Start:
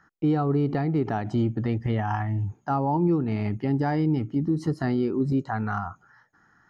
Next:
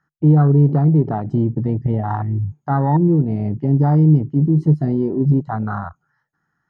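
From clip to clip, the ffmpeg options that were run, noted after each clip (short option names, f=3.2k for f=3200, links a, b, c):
-af "afwtdn=0.0447,equalizer=f=150:t=o:w=0.28:g=11.5,volume=5dB"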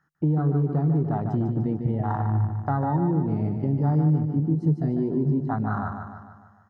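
-filter_complex "[0:a]acompressor=threshold=-25dB:ratio=2.5,asplit=2[a][b];[b]aecho=0:1:149|298|447|596|745|894|1043:0.473|0.251|0.133|0.0704|0.0373|0.0198|0.0105[c];[a][c]amix=inputs=2:normalize=0"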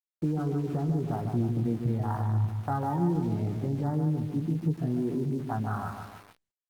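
-filter_complex "[0:a]aeval=exprs='val(0)*gte(abs(val(0)),0.0106)':c=same,asplit=2[a][b];[b]adelay=17,volume=-7dB[c];[a][c]amix=inputs=2:normalize=0,volume=-5dB" -ar 48000 -c:a libopus -b:a 48k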